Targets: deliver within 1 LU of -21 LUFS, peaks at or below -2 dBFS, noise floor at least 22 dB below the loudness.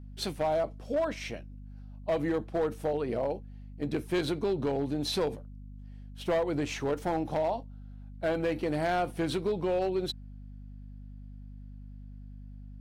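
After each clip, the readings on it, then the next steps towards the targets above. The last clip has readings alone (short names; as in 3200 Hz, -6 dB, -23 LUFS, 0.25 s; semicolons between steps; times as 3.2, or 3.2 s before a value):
clipped 1.5%; flat tops at -23.0 dBFS; hum 50 Hz; harmonics up to 250 Hz; hum level -43 dBFS; loudness -31.5 LUFS; peak -23.0 dBFS; loudness target -21.0 LUFS
-> clip repair -23 dBFS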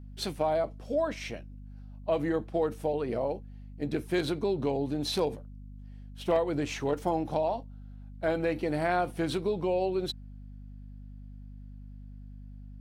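clipped 0.0%; hum 50 Hz; harmonics up to 250 Hz; hum level -43 dBFS
-> notches 50/100/150/200/250 Hz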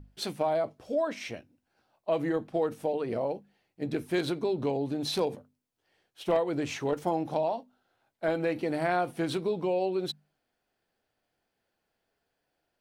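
hum none; loudness -31.0 LUFS; peak -15.0 dBFS; loudness target -21.0 LUFS
-> gain +10 dB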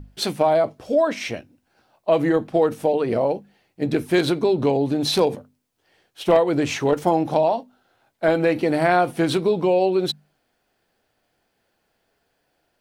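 loudness -21.0 LUFS; peak -5.0 dBFS; noise floor -71 dBFS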